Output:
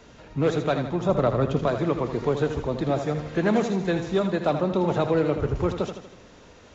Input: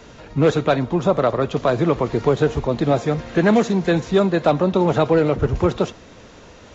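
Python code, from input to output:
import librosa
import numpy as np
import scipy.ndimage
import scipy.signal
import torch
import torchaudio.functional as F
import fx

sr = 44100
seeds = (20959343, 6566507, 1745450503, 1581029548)

y = fx.low_shelf(x, sr, hz=260.0, db=10.0, at=(1.09, 1.68))
y = fx.echo_feedback(y, sr, ms=80, feedback_pct=50, wet_db=-8.5)
y = F.gain(torch.from_numpy(y), -7.0).numpy()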